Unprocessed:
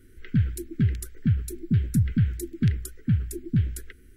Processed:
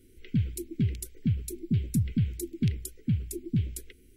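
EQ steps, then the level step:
low-shelf EQ 180 Hz −7 dB
flat-topped bell 1,300 Hz −15.5 dB 1.2 octaves
0.0 dB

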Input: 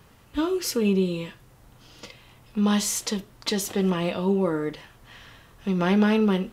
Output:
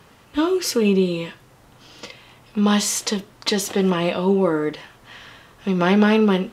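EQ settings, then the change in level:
low-shelf EQ 110 Hz −12 dB
high-shelf EQ 11,000 Hz −9.5 dB
+6.5 dB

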